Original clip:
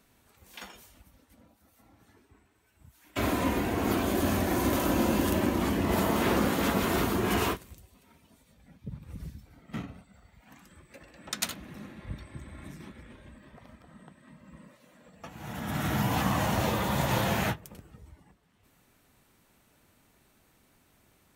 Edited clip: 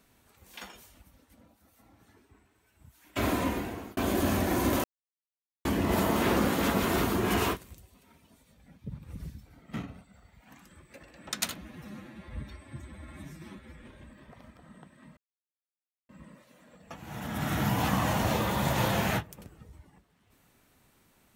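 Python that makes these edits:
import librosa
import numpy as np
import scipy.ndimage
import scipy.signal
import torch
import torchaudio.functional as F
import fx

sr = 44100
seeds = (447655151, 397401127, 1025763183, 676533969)

y = fx.edit(x, sr, fx.fade_out_span(start_s=3.35, length_s=0.62),
    fx.silence(start_s=4.84, length_s=0.81),
    fx.stretch_span(start_s=11.58, length_s=1.5, factor=1.5),
    fx.insert_silence(at_s=14.42, length_s=0.92), tone=tone)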